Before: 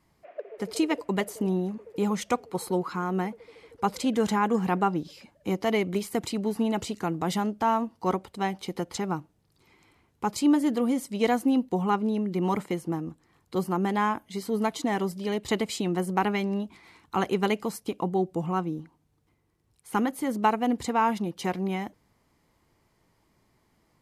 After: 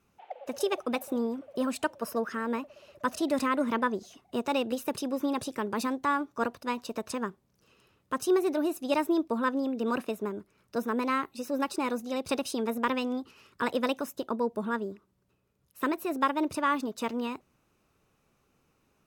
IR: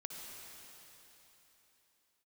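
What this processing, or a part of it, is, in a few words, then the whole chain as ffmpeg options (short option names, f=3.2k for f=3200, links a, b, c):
nightcore: -af "asetrate=55566,aresample=44100,volume=-3dB"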